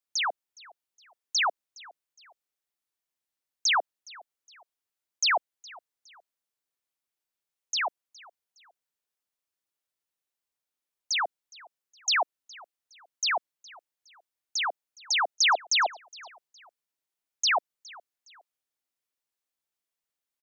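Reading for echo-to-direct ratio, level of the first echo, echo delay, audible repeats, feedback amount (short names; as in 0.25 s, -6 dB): -22.0 dB, -22.5 dB, 0.414 s, 2, 36%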